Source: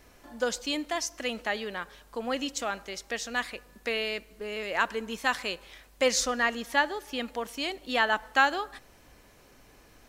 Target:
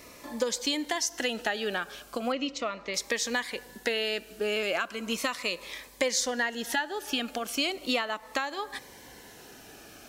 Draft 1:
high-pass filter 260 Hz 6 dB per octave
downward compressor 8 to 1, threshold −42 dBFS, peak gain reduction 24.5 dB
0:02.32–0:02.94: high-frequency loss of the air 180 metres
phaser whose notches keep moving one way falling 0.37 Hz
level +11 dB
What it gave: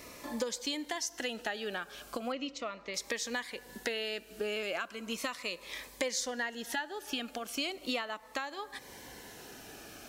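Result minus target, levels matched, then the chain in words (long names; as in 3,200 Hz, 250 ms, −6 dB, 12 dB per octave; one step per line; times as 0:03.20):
downward compressor: peak gain reduction +6.5 dB
high-pass filter 260 Hz 6 dB per octave
downward compressor 8 to 1, threshold −34.5 dBFS, peak gain reduction 17.5 dB
0:02.32–0:02.94: high-frequency loss of the air 180 metres
phaser whose notches keep moving one way falling 0.37 Hz
level +11 dB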